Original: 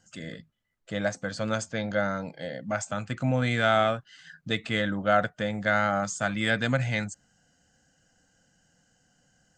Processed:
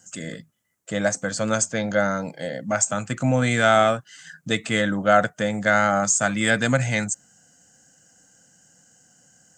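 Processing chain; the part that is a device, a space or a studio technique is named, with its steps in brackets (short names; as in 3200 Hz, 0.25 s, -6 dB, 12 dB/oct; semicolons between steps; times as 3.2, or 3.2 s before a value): budget condenser microphone (HPF 110 Hz; resonant high shelf 5500 Hz +8.5 dB, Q 1.5); gain +6 dB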